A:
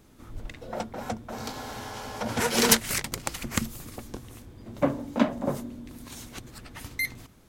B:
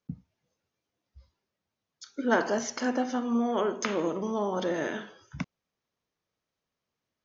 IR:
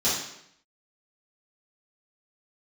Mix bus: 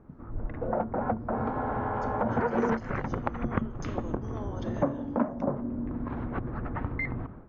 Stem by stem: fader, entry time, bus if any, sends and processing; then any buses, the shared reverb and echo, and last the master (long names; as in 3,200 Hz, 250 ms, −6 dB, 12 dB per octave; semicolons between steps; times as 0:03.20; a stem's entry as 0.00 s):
+2.0 dB, 0.00 s, no send, low-pass filter 1,400 Hz 24 dB per octave; automatic gain control gain up to 11 dB
−10.5 dB, 0.00 s, no send, no processing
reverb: not used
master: downward compressor 3 to 1, threshold −28 dBFS, peak gain reduction 16 dB